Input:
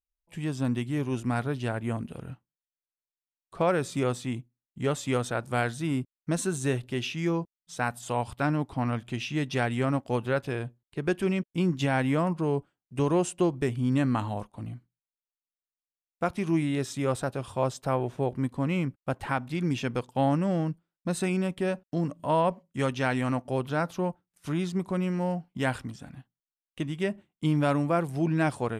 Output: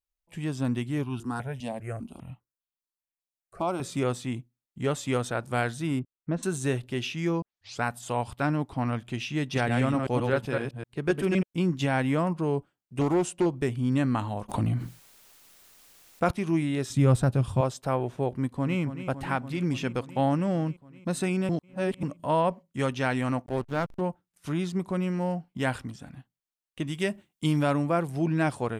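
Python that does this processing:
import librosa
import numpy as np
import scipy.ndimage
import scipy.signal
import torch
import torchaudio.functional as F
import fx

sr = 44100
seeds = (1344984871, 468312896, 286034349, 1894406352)

y = fx.phaser_held(x, sr, hz=5.0, low_hz=380.0, high_hz=1900.0, at=(1.03, 3.8), fade=0.02)
y = fx.spacing_loss(y, sr, db_at_10k=35, at=(5.99, 6.43))
y = fx.reverse_delay(y, sr, ms=128, wet_db=-3.0, at=(9.43, 11.43))
y = fx.doppler_dist(y, sr, depth_ms=0.35, at=(13.01, 13.46))
y = fx.env_flatten(y, sr, amount_pct=70, at=(14.48, 16.3), fade=0.02)
y = fx.bass_treble(y, sr, bass_db=14, treble_db=1, at=(16.9, 17.61))
y = fx.echo_throw(y, sr, start_s=18.29, length_s=0.51, ms=280, feedback_pct=80, wet_db=-11.0)
y = fx.backlash(y, sr, play_db=-29.5, at=(23.46, 24.01))
y = fx.high_shelf(y, sr, hz=2900.0, db=9.5, at=(26.87, 27.63))
y = fx.edit(y, sr, fx.tape_start(start_s=7.42, length_s=0.41),
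    fx.reverse_span(start_s=21.49, length_s=0.54), tone=tone)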